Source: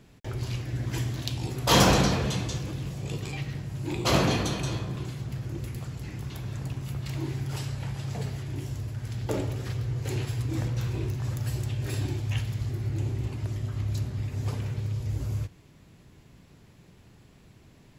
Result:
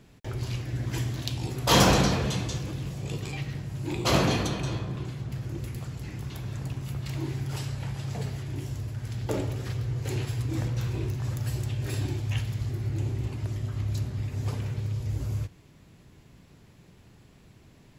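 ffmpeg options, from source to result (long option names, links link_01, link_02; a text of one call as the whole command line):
ffmpeg -i in.wav -filter_complex "[0:a]asettb=1/sr,asplit=3[link_01][link_02][link_03];[link_01]atrim=end=4.474[link_04];[link_02]atrim=start=4.47:end=5.32,asetpts=PTS-STARTPTS,afade=type=in:duration=0.004:curve=qsin,afade=type=out:start_time=0.846:duration=0.004:curve=qsin,highshelf=frequency=5000:gain=-7[link_05];[link_03]atrim=start=5.316[link_06];[link_04][link_05]acrossfade=duration=0.004:curve1=hsin:curve2=qsin[link_07];[link_07][link_06]acrossfade=duration=0.004:curve1=qsin:curve2=hsin" out.wav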